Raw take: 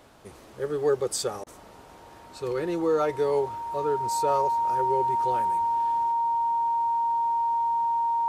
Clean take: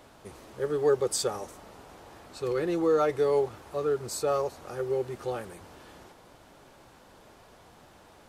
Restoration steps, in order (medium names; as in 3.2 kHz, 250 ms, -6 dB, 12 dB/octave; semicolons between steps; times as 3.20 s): band-stop 930 Hz, Q 30; interpolate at 1.44 s, 25 ms